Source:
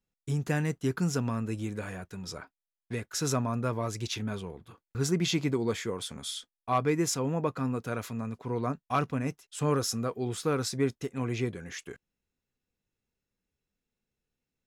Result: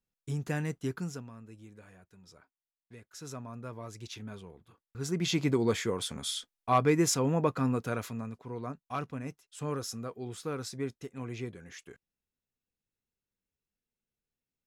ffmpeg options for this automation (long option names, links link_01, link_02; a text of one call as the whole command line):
ffmpeg -i in.wav -af "volume=15dB,afade=type=out:start_time=0.83:duration=0.45:silence=0.223872,afade=type=in:start_time=2.92:duration=1.33:silence=0.398107,afade=type=in:start_time=4.97:duration=0.62:silence=0.281838,afade=type=out:start_time=7.73:duration=0.72:silence=0.334965" out.wav